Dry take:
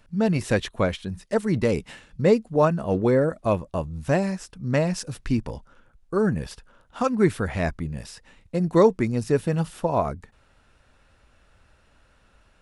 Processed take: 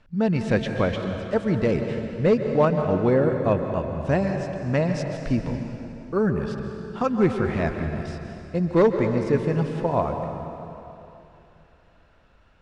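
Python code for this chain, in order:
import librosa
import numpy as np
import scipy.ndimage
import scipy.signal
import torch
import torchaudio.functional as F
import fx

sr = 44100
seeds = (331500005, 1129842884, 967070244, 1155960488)

y = np.clip(x, -10.0 ** (-11.5 / 20.0), 10.0 ** (-11.5 / 20.0))
y = fx.air_absorb(y, sr, metres=120.0)
y = fx.rev_plate(y, sr, seeds[0], rt60_s=3.0, hf_ratio=0.85, predelay_ms=120, drr_db=5.0)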